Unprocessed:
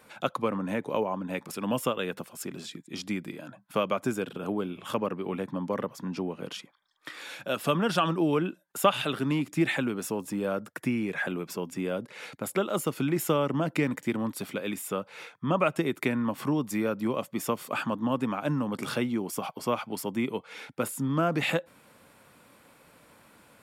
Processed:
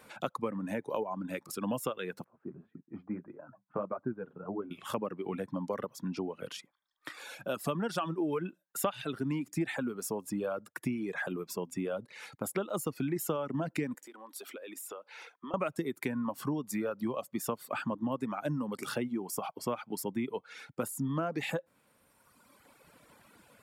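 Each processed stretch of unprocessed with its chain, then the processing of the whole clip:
0:02.24–0:04.71: low-pass filter 1,400 Hz 24 dB per octave + flanger 1.7 Hz, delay 6.5 ms, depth 6.9 ms, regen −38%
0:13.94–0:15.54: high-pass filter 300 Hz 24 dB per octave + downward compressor, threshold −39 dBFS
whole clip: reverb reduction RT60 1.7 s; downward compressor 2.5 to 1, threshold −31 dBFS; dynamic equaliser 3,000 Hz, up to −5 dB, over −51 dBFS, Q 0.85

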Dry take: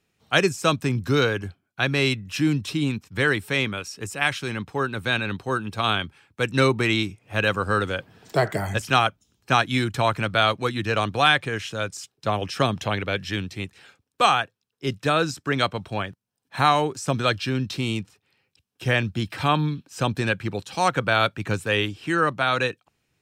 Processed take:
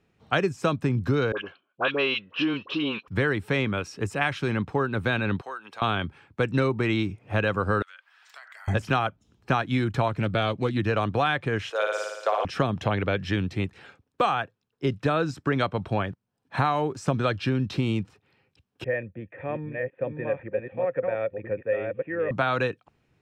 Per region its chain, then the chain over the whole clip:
0:01.32–0:03.08: loudspeaker in its box 460–4,200 Hz, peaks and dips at 510 Hz +4 dB, 770 Hz −5 dB, 1,100 Hz +6 dB, 2,000 Hz −6 dB, 2,900 Hz +9 dB + all-pass dispersion highs, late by 53 ms, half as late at 1,200 Hz
0:05.41–0:05.82: high-pass filter 800 Hz + downward compressor 2.5 to 1, threshold −42 dBFS
0:07.82–0:08.68: high-pass filter 1,300 Hz 24 dB per octave + downward compressor, threshold −45 dBFS
0:10.08–0:10.77: parametric band 1,200 Hz −7.5 dB 1.7 octaves + highs frequency-modulated by the lows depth 0.16 ms
0:11.70–0:12.45: Butterworth high-pass 440 Hz + flutter between parallel walls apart 9.7 metres, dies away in 1.1 s
0:18.84–0:22.31: delay that plays each chunk backwards 531 ms, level −4 dB + formant resonators in series e
whole clip: low-pass filter 1,300 Hz 6 dB per octave; downward compressor 4 to 1, threshold −28 dBFS; level +6.5 dB

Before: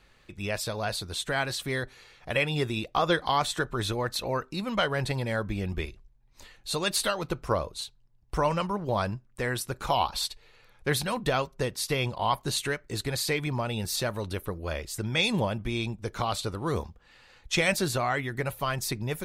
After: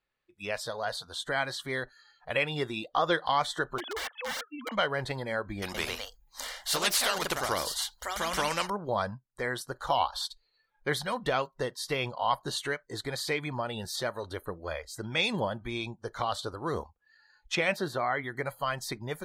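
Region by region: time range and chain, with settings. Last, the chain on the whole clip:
0:03.78–0:04.72: three sine waves on the formant tracks + high-pass filter 310 Hz + wrap-around overflow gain 26.5 dB
0:05.62–0:08.70: delay with pitch and tempo change per echo 124 ms, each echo +2 semitones, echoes 2, each echo −6 dB + high-shelf EQ 5,000 Hz +10 dB + every bin compressed towards the loudest bin 2 to 1
0:17.55–0:18.24: high-pass filter 70 Hz 6 dB per octave + parametric band 7,600 Hz −9.5 dB 1.5 octaves
whole clip: low-pass filter 3,700 Hz 6 dB per octave; noise reduction from a noise print of the clip's start 21 dB; low-shelf EQ 240 Hz −9.5 dB

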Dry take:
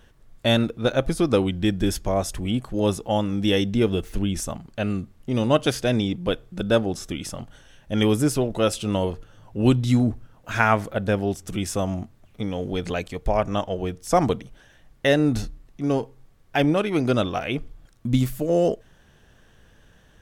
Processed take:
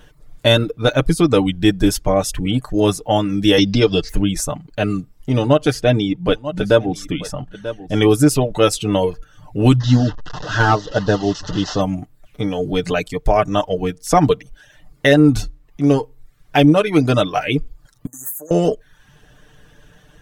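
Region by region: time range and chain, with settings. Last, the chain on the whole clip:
0:03.58–0:04.09: low-pass with resonance 4,900 Hz, resonance Q 6.7 + multiband upward and downward compressor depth 70%
0:05.32–0:08.11: high-shelf EQ 5,600 Hz −9 dB + single-tap delay 939 ms −15 dB
0:09.80–0:11.81: linear delta modulator 32 kbit/s, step −29 dBFS + Butterworth band-reject 2,300 Hz, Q 3 + hard clipping −10.5 dBFS
0:18.06–0:18.51: first difference + leveller curve on the samples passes 1 + linear-phase brick-wall band-stop 1,900–6,000 Hz
whole clip: reverb reduction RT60 0.56 s; comb filter 6.7 ms, depth 60%; boost into a limiter +7.5 dB; level −1 dB

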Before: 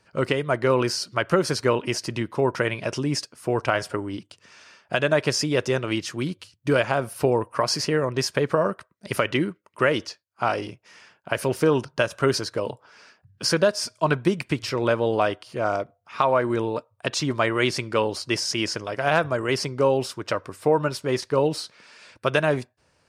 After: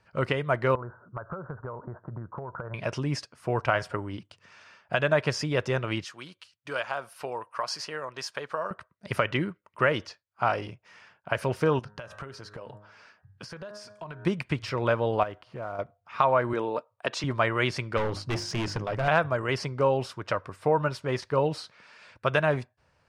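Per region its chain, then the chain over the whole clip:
0:00.75–0:02.74: Butterworth low-pass 1,500 Hz 72 dB per octave + dynamic equaliser 290 Hz, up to −7 dB, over −35 dBFS, Q 1.4 + downward compressor 12 to 1, threshold −29 dBFS
0:06.04–0:08.71: high-pass filter 1,400 Hz 6 dB per octave + dynamic equaliser 2,100 Hz, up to −5 dB, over −45 dBFS, Q 2.1
0:11.79–0:14.25: hum removal 104 Hz, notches 18 + downward compressor 16 to 1, threshold −33 dBFS
0:15.23–0:15.79: one scale factor per block 5 bits + low-pass filter 1,800 Hz 6 dB per octave + downward compressor 2.5 to 1, threshold −32 dBFS
0:16.53–0:17.24: high-pass filter 310 Hz + low-shelf EQ 400 Hz +6 dB
0:17.97–0:19.08: low-shelf EQ 390 Hz +10.5 dB + mains-hum notches 50/100/150/200/250/300/350 Hz + hard clipping −21.5 dBFS
whole clip: low-pass filter 1,700 Hz 6 dB per octave; parametric band 320 Hz −8.5 dB 1.6 octaves; level +1.5 dB

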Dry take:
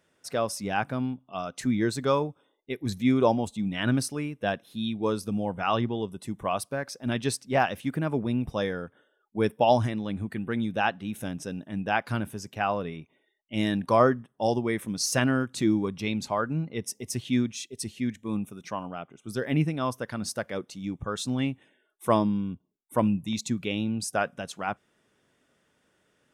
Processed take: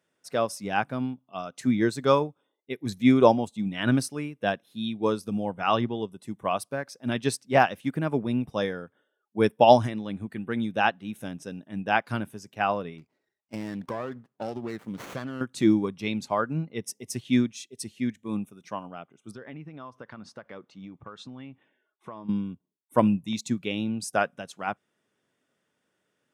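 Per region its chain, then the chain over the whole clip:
0:12.98–0:15.41: downward compressor 12 to 1, threshold −27 dBFS + windowed peak hold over 9 samples
0:19.31–0:22.29: low-pass filter 3,400 Hz + parametric band 1,100 Hz +5.5 dB 0.92 octaves + downward compressor 10 to 1, threshold −33 dBFS
whole clip: high-pass filter 110 Hz; expander for the loud parts 1.5 to 1, over −43 dBFS; level +6 dB

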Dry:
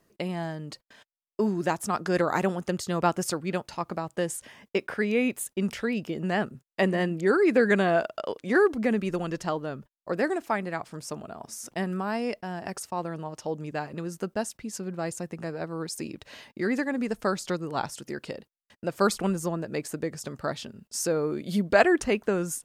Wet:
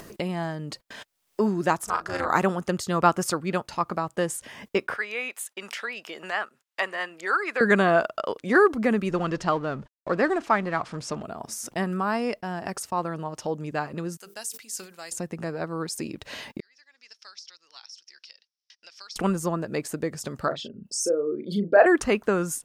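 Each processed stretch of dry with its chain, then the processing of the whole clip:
0:01.84–0:02.30: parametric band 140 Hz −14 dB 2.6 octaves + amplitude modulation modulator 260 Hz, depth 90% + double-tracking delay 37 ms −5 dB
0:04.96–0:07.61: high-pass filter 950 Hz + high-shelf EQ 6,400 Hz −7 dB
0:09.11–0:11.23: mu-law and A-law mismatch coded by mu + low-pass filter 6,000 Hz
0:14.17–0:15.12: first difference + mains-hum notches 50/100/150/200/250/300/350/400/450 Hz + level that may fall only so fast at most 150 dB per second
0:16.60–0:19.16: four-pole ladder band-pass 5,800 Hz, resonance 80% + high-frequency loss of the air 340 metres
0:20.48–0:21.86: spectral envelope exaggerated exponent 2 + high-pass filter 230 Hz 6 dB per octave + double-tracking delay 35 ms −7.5 dB
whole clip: dynamic equaliser 1,200 Hz, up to +7 dB, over −44 dBFS, Q 2.2; upward compression, threshold −31 dBFS; level +2 dB

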